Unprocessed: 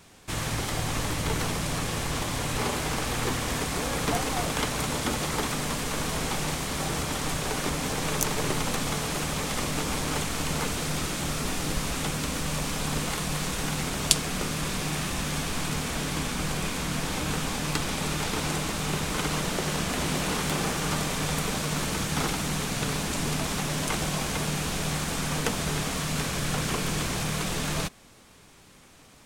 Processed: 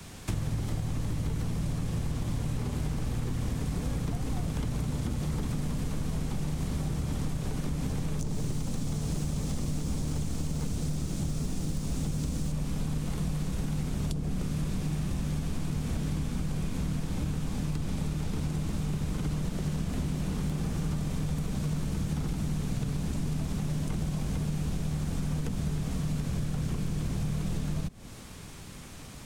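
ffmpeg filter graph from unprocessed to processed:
-filter_complex "[0:a]asettb=1/sr,asplit=3[s0][s1][s2];[s0]atrim=end=8.194[s3];[s1]atrim=start=8.19:end=12.52,asetpts=PTS-STARTPTS,afade=t=in:d=0.004:c=qsin,afade=t=out:st=4.326:d=0.004:c=qsin,acrossover=split=8900[s4][s5];[s5]acompressor=threshold=0.00398:ratio=4:attack=1:release=60[s6];[s4][s6]amix=inputs=2:normalize=0,acrusher=bits=6:mode=log:mix=0:aa=0.000001,bass=f=250:g=0,treble=f=4000:g=10[s7];[s2]atrim=start=12.516[s8];[s3][s7]acrossfade=d=0.004:c1=hsin:c2=qsin[s9];[s9][s8]acrossfade=d=0.004:c1=qsin:c2=hsin,acrossover=split=120|260|740[s10][s11][s12][s13];[s10]acompressor=threshold=0.0178:ratio=4[s14];[s11]acompressor=threshold=0.0141:ratio=4[s15];[s12]acompressor=threshold=0.00631:ratio=4[s16];[s13]acompressor=threshold=0.00501:ratio=4[s17];[s14][s15][s16][s17]amix=inputs=4:normalize=0,bass=f=250:g=9,treble=f=4000:g=2,acompressor=threshold=0.0251:ratio=6,volume=1.68"

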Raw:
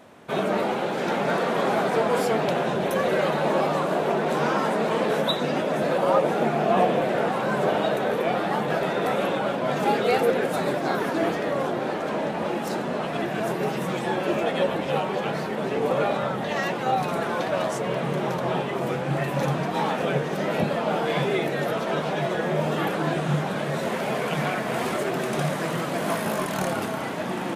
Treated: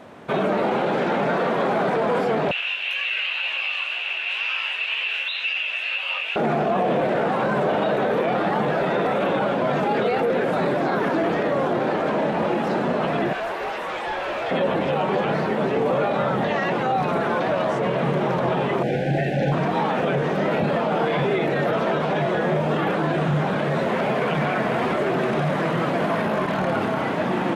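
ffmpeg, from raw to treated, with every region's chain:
-filter_complex "[0:a]asettb=1/sr,asplit=3[s0][s1][s2];[s0]atrim=end=2.514[s3];[s1]atrim=start=2.51:end=6.36,asetpts=PTS-STARTPTS,afade=t=in:d=0.004:c=qsin,afade=t=out:st=3.846:d=0.004:c=qsin,flanger=delay=15.5:depth=7.1:speed=2,highpass=f=2700:t=q:w=13[s4];[s2]atrim=start=6.356[s5];[s3][s4]acrossfade=d=0.004:c1=hsin:c2=qsin[s6];[s6][s5]acrossfade=d=0.004:c1=qsin:c2=hsin,asettb=1/sr,asplit=3[s7][s8][s9];[s7]atrim=end=13.334[s10];[s8]atrim=start=13.33:end=14.51,asetpts=PTS-STARTPTS,afade=t=in:d=0.004:c=qsin,afade=t=out:st=1.176:d=0.004:c=qsin,highpass=700,asoftclip=type=hard:threshold=0.0316[s11];[s9]atrim=start=14.506[s12];[s10][s11]acrossfade=d=0.004:c1=hsin:c2=qsin[s13];[s13][s12]acrossfade=d=0.004:c1=qsin:c2=hsin,asettb=1/sr,asplit=3[s14][s15][s16];[s14]atrim=end=18.834[s17];[s15]atrim=start=18.83:end=19.52,asetpts=PTS-STARTPTS,afade=t=in:d=0.004:c=qsin,afade=t=out:st=0.686:d=0.004:c=qsin,acrossover=split=7000[s18][s19];[s19]acompressor=threshold=0.00141:ratio=4:attack=1:release=60[s20];[s18][s20]amix=inputs=2:normalize=0,aeval=exprs='sgn(val(0))*max(abs(val(0))-0.00794,0)':c=same,asuperstop=centerf=1100:order=20:qfactor=1.7[s21];[s16]atrim=start=19.516[s22];[s17][s21]acrossfade=d=0.004:c1=hsin:c2=qsin[s23];[s23][s22]acrossfade=d=0.004:c1=qsin:c2=hsin,alimiter=limit=0.1:level=0:latency=1:release=23,acrossover=split=4000[s24][s25];[s25]acompressor=threshold=0.00282:ratio=4:attack=1:release=60[s26];[s24][s26]amix=inputs=2:normalize=0,highshelf=f=6000:g=-12,volume=2.11"

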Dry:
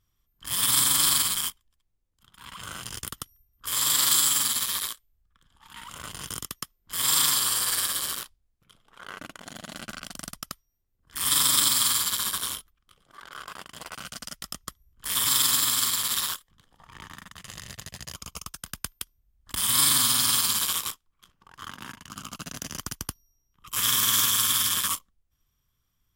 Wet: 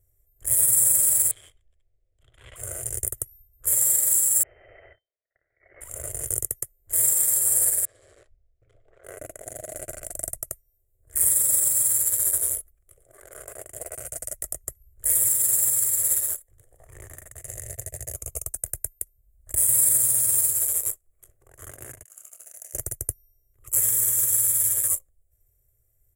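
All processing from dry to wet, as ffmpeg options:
-filter_complex "[0:a]asettb=1/sr,asplit=3[s0][s1][s2];[s0]atrim=end=1.314[s3];[s1]atrim=start=1.31:end=2.56,asetpts=PTS-STARTPTS,afade=t=in:d=0.004:c=qsin,afade=t=out:st=1.246:d=0.004:c=qsin,acompressor=threshold=0.0141:ratio=8:attack=3.2:release=140:knee=1:detection=peak,lowpass=f=3300:t=q:w=4.6[s4];[s2]atrim=start=2.556[s5];[s3][s4]acrossfade=d=0.004:c1=hsin:c2=qsin[s6];[s6][s5]acrossfade=d=0.004:c1=qsin:c2=hsin,asettb=1/sr,asplit=3[s7][s8][s9];[s7]atrim=end=4.434[s10];[s8]atrim=start=4.43:end=5.81,asetpts=PTS-STARTPTS,afade=t=in:d=0.004:c=qsin,afade=t=out:st=1.376:d=0.004:c=qsin,highpass=f=820:w=0.5412,highpass=f=820:w=1.3066,aeval=exprs='(tanh(70.8*val(0)+0.25)-tanh(0.25))/70.8':c=same,lowpass=f=2600:t=q:w=0.5098,lowpass=f=2600:t=q:w=0.6013,lowpass=f=2600:t=q:w=0.9,lowpass=f=2600:t=q:w=2.563,afreqshift=-3100[s11];[s9]atrim=start=5.806[s12];[s10][s11]acrossfade=d=0.004:c1=hsin:c2=qsin[s13];[s13][s12]acrossfade=d=0.004:c1=qsin:c2=hsin,asettb=1/sr,asplit=3[s14][s15][s16];[s14]atrim=end=7.854[s17];[s15]atrim=start=7.85:end=9.04,asetpts=PTS-STARTPTS,afade=t=in:d=0.004:c=qsin,afade=t=out:st=1.186:d=0.004:c=qsin,lowpass=f=4500:w=0.5412,lowpass=f=4500:w=1.3066,acompressor=threshold=0.00282:ratio=3:attack=3.2:release=140:knee=1:detection=peak[s18];[s16]atrim=start=9.036[s19];[s17][s18]acrossfade=d=0.004:c1=hsin:c2=qsin[s20];[s20][s19]acrossfade=d=0.004:c1=qsin:c2=hsin,asettb=1/sr,asplit=3[s21][s22][s23];[s21]atrim=end=22.034[s24];[s22]atrim=start=22.03:end=22.74,asetpts=PTS-STARTPTS,afade=t=in:d=0.004:c=qsin,afade=t=out:st=0.706:d=0.004:c=qsin,aderivative,asplit=2[s25][s26];[s26]highpass=f=720:p=1,volume=2.24,asoftclip=type=tanh:threshold=0.178[s27];[s25][s27]amix=inputs=2:normalize=0,lowpass=f=1500:p=1,volume=0.501,asplit=2[s28][s29];[s29]adelay=27,volume=0.398[s30];[s28][s30]amix=inputs=2:normalize=0,atrim=end_sample=31311[s31];[s23]atrim=start=22.736[s32];[s24][s31]acrossfade=d=0.004:c1=hsin:c2=qsin[s33];[s33][s32]acrossfade=d=0.004:c1=qsin:c2=hsin,equalizer=f=8300:t=o:w=0.27:g=-6.5,alimiter=limit=0.126:level=0:latency=1:release=400,firequalizer=gain_entry='entry(120,0);entry(180,-28);entry(370,0);entry(640,4);entry(930,-24);entry(2000,-10);entry(3100,-27);entry(5100,-22);entry(7800,9);entry(14000,2)':delay=0.05:min_phase=1,volume=2.37"

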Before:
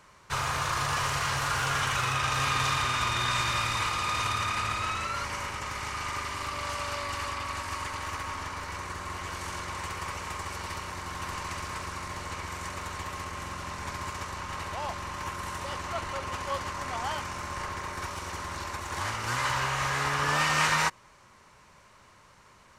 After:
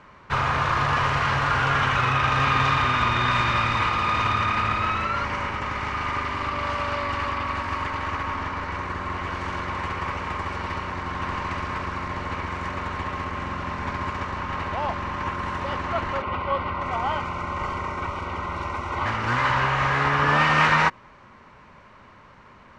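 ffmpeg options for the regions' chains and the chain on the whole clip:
-filter_complex "[0:a]asettb=1/sr,asplit=3[s0][s1][s2];[s0]atrim=end=16.224[s3];[s1]atrim=start=16.22:end=19.06,asetpts=PTS-STARTPTS,afade=t=in:d=0.004:c=qsin,afade=t=out:st=2.836:d=0.004:c=qsin,asuperstop=centerf=1700:order=12:qfactor=5.8,acrossover=split=210|4300[s4][s5][s6];[s4]adelay=40[s7];[s6]adelay=590[s8];[s7][s5][s8]amix=inputs=3:normalize=0,atrim=end_sample=125244[s9];[s2]atrim=start=19.056[s10];[s3][s9]acrossfade=d=0.004:c1=hsin:c2=qsin[s11];[s11][s10]acrossfade=d=0.004:c1=qsin:c2=hsin,lowpass=2600,equalizer=f=240:t=o:w=0.54:g=5.5,volume=2.37"

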